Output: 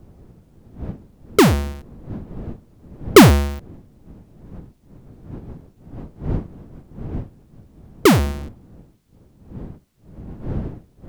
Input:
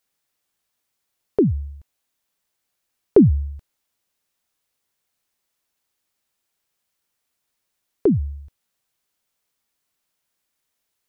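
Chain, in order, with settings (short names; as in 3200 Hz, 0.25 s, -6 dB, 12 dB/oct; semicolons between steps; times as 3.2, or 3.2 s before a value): half-waves squared off; wind noise 200 Hz -36 dBFS; gain +2 dB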